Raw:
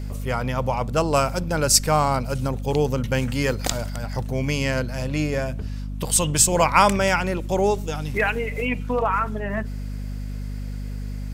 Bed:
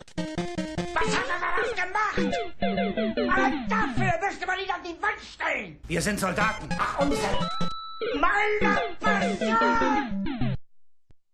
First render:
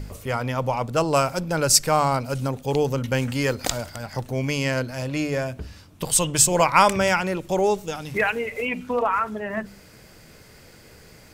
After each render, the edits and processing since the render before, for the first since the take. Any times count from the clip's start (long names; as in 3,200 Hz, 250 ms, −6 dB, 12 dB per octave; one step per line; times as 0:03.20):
hum removal 50 Hz, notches 5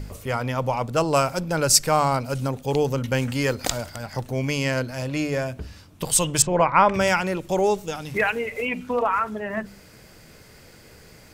0:06.42–0:06.94: low-pass filter 1,900 Hz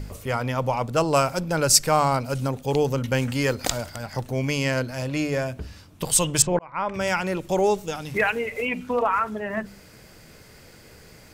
0:06.59–0:07.37: fade in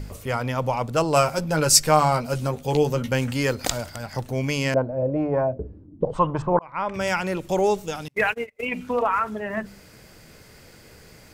0:01.14–0:03.09: double-tracking delay 13 ms −6 dB
0:04.74–0:06.62: envelope-controlled low-pass 260–1,100 Hz up, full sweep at −19.5 dBFS
0:08.08–0:08.72: noise gate −27 dBFS, range −35 dB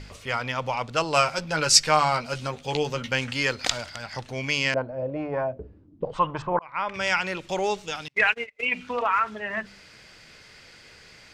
low-pass filter 4,100 Hz 12 dB per octave
tilt shelving filter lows −8.5 dB, about 1,200 Hz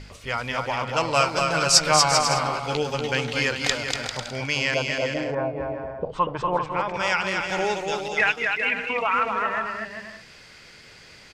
bouncing-ball delay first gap 240 ms, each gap 0.65×, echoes 5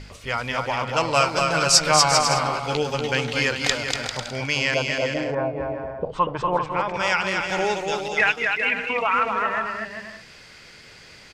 level +1.5 dB
brickwall limiter −3 dBFS, peak gain reduction 2.5 dB